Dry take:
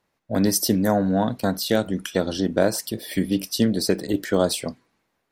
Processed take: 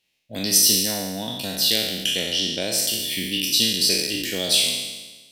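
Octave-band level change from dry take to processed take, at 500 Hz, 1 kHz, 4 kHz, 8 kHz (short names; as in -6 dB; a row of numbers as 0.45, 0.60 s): -8.0, -9.5, +12.0, +9.0 dB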